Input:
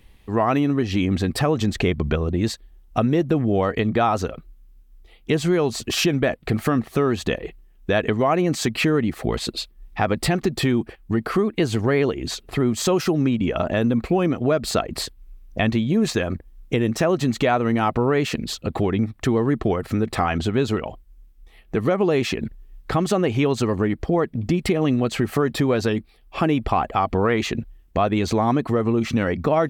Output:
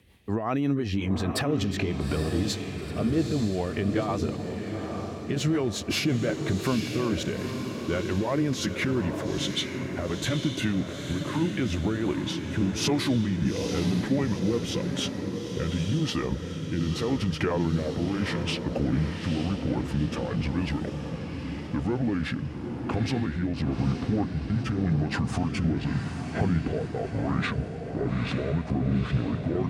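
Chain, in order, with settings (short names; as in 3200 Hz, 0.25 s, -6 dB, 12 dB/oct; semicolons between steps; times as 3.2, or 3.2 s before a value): gliding pitch shift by -10 st starting unshifted; HPF 70 Hz 24 dB/oct; limiter -16.5 dBFS, peak gain reduction 11.5 dB; rotary speaker horn 5.5 Hz, later 0.9 Hz, at 11.47; on a send: diffused feedback echo 0.875 s, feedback 53%, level -6 dB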